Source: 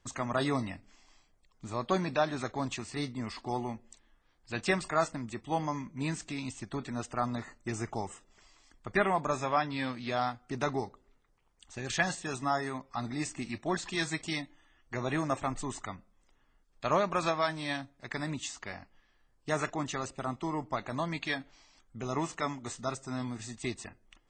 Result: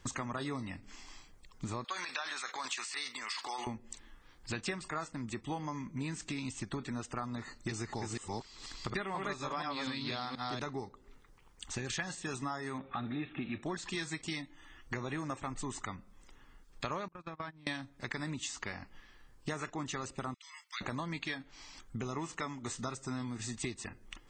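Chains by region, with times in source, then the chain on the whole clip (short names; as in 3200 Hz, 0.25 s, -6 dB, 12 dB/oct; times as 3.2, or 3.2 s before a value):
1.84–3.67 HPF 1300 Hz + transient shaper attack +3 dB, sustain +11 dB
7.45–10.62 reverse delay 0.242 s, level -1 dB + bell 4200 Hz +11 dB 0.57 oct
12.78–13.63 G.711 law mismatch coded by mu + brick-wall FIR low-pass 4100 Hz + notch comb 1000 Hz
17.08–17.67 gate -31 dBFS, range -32 dB + tone controls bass +8 dB, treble -14 dB + compressor 10:1, threshold -42 dBFS
20.34–20.81 Bessel high-pass 2800 Hz, order 6 + bell 7300 Hz -6 dB 0.27 oct
whole clip: bell 660 Hz -7.5 dB 0.4 oct; compressor 6:1, threshold -47 dBFS; gain +10.5 dB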